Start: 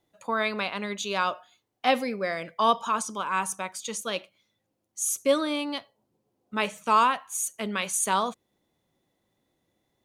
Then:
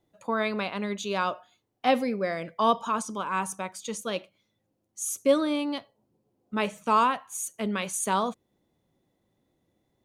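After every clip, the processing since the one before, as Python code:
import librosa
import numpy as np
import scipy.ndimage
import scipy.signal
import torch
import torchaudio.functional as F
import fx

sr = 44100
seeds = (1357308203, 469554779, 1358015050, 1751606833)

y = fx.tilt_shelf(x, sr, db=4.0, hz=700.0)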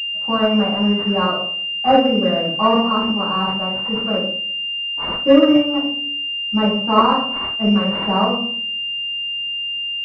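y = fx.room_shoebox(x, sr, seeds[0], volume_m3=560.0, walls='furnished', distance_m=8.4)
y = fx.pwm(y, sr, carrier_hz=2800.0)
y = y * librosa.db_to_amplitude(-1.0)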